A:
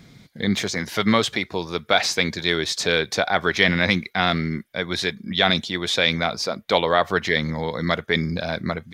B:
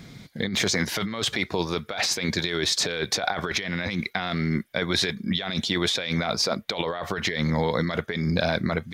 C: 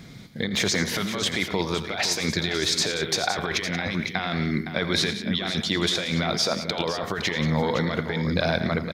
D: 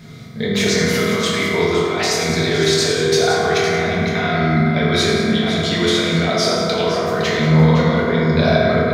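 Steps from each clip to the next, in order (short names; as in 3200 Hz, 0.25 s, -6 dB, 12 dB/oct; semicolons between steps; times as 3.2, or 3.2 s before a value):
negative-ratio compressor -26 dBFS, ratio -1
tapped delay 84/109/181/512 ms -14/-16/-12.5/-10.5 dB
reverb RT60 2.8 s, pre-delay 4 ms, DRR -7.5 dB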